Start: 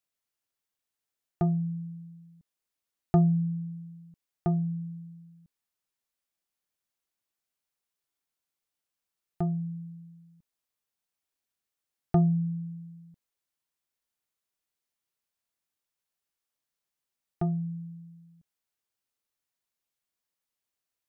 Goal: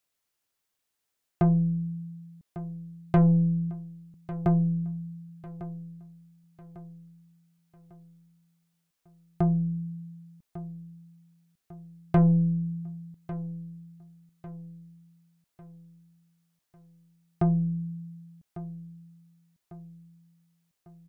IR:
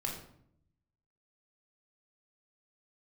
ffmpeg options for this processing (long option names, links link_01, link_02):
-filter_complex "[0:a]aeval=exprs='(tanh(12.6*val(0)+0.15)-tanh(0.15))/12.6':channel_layout=same,asplit=2[link_01][link_02];[link_02]aecho=0:1:1149|2298|3447|4596:0.178|0.0765|0.0329|0.0141[link_03];[link_01][link_03]amix=inputs=2:normalize=0,volume=6.5dB"